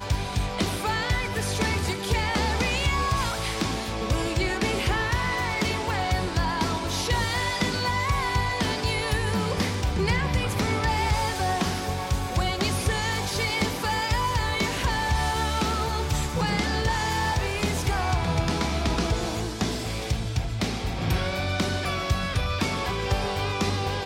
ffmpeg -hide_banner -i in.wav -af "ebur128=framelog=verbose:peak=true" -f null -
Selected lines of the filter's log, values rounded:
Integrated loudness:
  I:         -25.9 LUFS
  Threshold: -35.9 LUFS
Loudness range:
  LRA:         1.8 LU
  Threshold: -45.9 LUFS
  LRA low:   -27.2 LUFS
  LRA high:  -25.4 LUFS
True peak:
  Peak:      -13.7 dBFS